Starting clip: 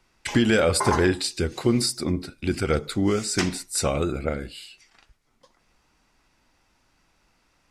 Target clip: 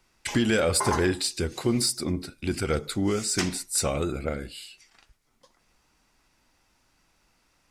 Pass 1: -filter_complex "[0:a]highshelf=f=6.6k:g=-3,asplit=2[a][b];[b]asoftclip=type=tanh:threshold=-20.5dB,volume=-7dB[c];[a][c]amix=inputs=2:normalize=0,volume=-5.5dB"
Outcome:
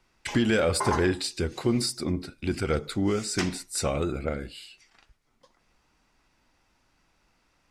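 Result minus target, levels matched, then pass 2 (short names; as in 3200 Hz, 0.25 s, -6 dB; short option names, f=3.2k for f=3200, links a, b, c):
8000 Hz band -4.5 dB
-filter_complex "[0:a]highshelf=f=6.6k:g=7,asplit=2[a][b];[b]asoftclip=type=tanh:threshold=-20.5dB,volume=-7dB[c];[a][c]amix=inputs=2:normalize=0,volume=-5.5dB"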